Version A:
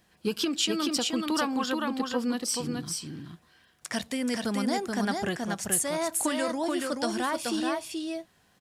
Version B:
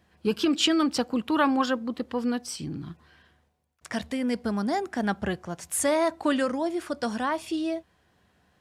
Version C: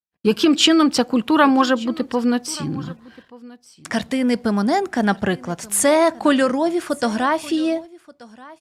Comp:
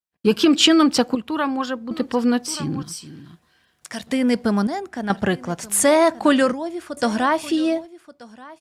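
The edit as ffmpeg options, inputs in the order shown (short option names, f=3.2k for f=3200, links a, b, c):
-filter_complex "[1:a]asplit=3[a][b][c];[2:a]asplit=5[d][e][f][g][h];[d]atrim=end=1.152[i];[a]atrim=start=1.148:end=1.912[j];[e]atrim=start=1.908:end=2.832[k];[0:a]atrim=start=2.828:end=4.072[l];[f]atrim=start=4.068:end=4.672[m];[b]atrim=start=4.668:end=5.102[n];[g]atrim=start=5.098:end=6.532[o];[c]atrim=start=6.528:end=6.972[p];[h]atrim=start=6.968[q];[i][j]acrossfade=d=0.004:c1=hsin:c2=hsin[r];[r][k]acrossfade=d=0.004:c1=hsin:c2=hsin[s];[s][l]acrossfade=d=0.004:c1=hsin:c2=hsin[t];[t][m]acrossfade=d=0.004:c1=hsin:c2=hsin[u];[u][n]acrossfade=d=0.004:c1=hsin:c2=hsin[v];[v][o]acrossfade=d=0.004:c1=hsin:c2=hsin[w];[w][p]acrossfade=d=0.004:c1=hsin:c2=hsin[x];[x][q]acrossfade=d=0.004:c1=hsin:c2=hsin"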